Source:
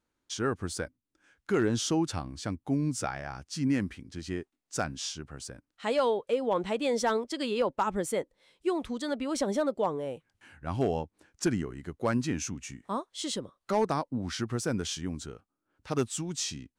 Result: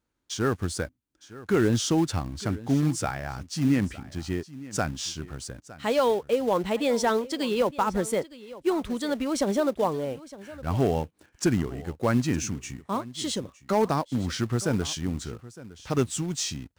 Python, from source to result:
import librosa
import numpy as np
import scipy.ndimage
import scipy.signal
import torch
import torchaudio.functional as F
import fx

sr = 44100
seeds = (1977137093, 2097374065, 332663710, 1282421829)

p1 = fx.highpass(x, sr, hz=46.0, slope=6)
p2 = fx.low_shelf(p1, sr, hz=120.0, db=9.0)
p3 = fx.quant_companded(p2, sr, bits=4)
p4 = p2 + (p3 * 10.0 ** (-7.5 / 20.0))
y = p4 + 10.0 ** (-18.0 / 20.0) * np.pad(p4, (int(911 * sr / 1000.0), 0))[:len(p4)]